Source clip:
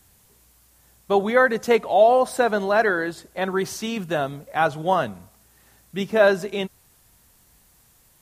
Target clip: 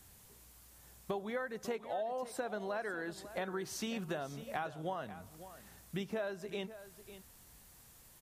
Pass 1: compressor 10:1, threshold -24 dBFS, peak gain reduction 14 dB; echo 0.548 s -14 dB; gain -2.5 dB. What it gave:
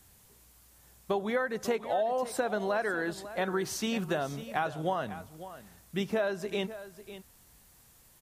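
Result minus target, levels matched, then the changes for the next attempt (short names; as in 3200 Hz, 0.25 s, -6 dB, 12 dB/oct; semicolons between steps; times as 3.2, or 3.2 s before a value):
compressor: peak gain reduction -8.5 dB
change: compressor 10:1, threshold -33.5 dBFS, peak gain reduction 22.5 dB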